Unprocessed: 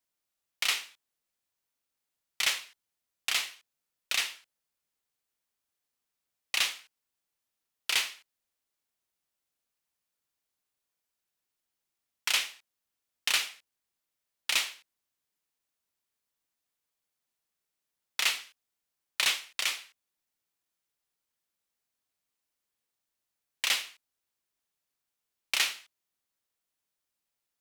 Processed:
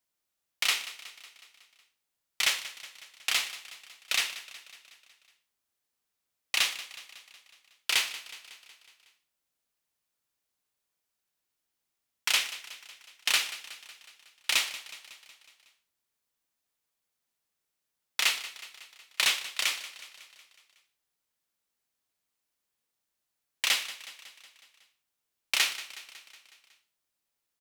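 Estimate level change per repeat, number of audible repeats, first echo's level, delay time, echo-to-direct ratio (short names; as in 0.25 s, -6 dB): -4.5 dB, 5, -15.5 dB, 0.184 s, -13.5 dB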